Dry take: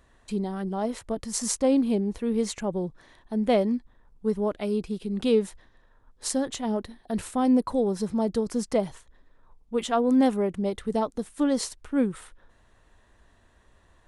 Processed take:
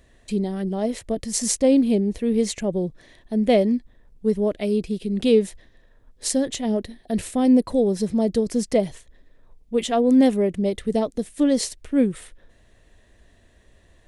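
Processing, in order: high-order bell 1.1 kHz -9.5 dB 1.1 oct; trim +5 dB

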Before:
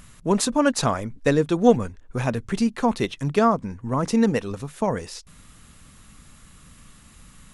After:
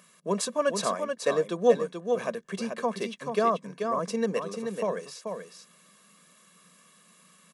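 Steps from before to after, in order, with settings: elliptic high-pass 180 Hz, stop band 50 dB; comb 1.8 ms, depth 67%; on a send: delay 434 ms -6 dB; on the sum: trim -7 dB

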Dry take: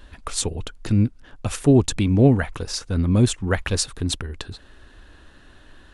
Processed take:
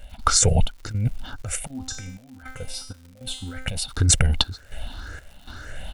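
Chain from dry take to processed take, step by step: drifting ripple filter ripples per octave 0.5, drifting +1.9 Hz, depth 13 dB; treble shelf 7 kHz +3.5 dB; comb 1.4 ms, depth 66%; compressor with a negative ratio -21 dBFS, ratio -1; 1.67–3.68 s: feedback comb 260 Hz, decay 0.54 s, harmonics all, mix 90%; trance gate "..xxxxx." 159 bpm -12 dB; crackle 190 per s -44 dBFS; trim +3.5 dB

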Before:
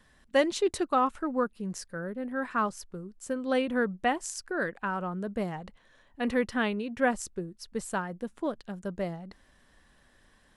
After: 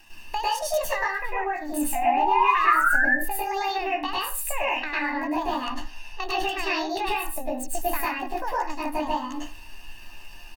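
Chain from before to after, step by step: rotating-head pitch shifter +7.5 st; peaking EQ 110 Hz -15 dB 2.2 oct; comb 1.1 ms, depth 72%; compression 5:1, threshold -39 dBFS, peak gain reduction 19 dB; painted sound rise, 1.95–3.05 s, 700–1800 Hz -35 dBFS; reverberation RT60 0.35 s, pre-delay 96 ms, DRR -5.5 dB; trim +8.5 dB

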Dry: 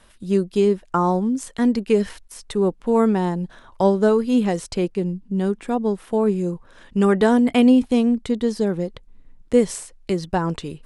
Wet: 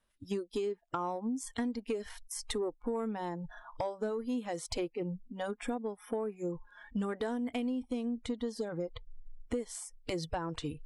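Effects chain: spectral noise reduction 25 dB; compression 12:1, threshold -31 dBFS, peak gain reduction 21 dB; saturation -22.5 dBFS, distortion -23 dB

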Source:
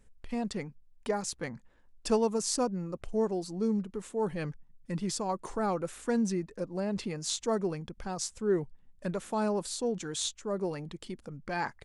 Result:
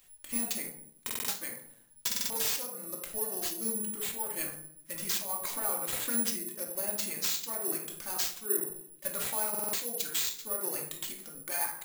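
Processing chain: tilt EQ +4 dB/octave; de-hum 50.78 Hz, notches 35; compression 6:1, threshold -33 dBFS, peak gain reduction 14.5 dB; flange 1.2 Hz, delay 0.7 ms, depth 4.5 ms, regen +52%; reverberation RT60 0.60 s, pre-delay 3 ms, DRR -0.5 dB; careless resampling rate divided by 4×, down none, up zero stuff; buffer glitch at 1.05/2.07/9.50 s, samples 2048, times 4

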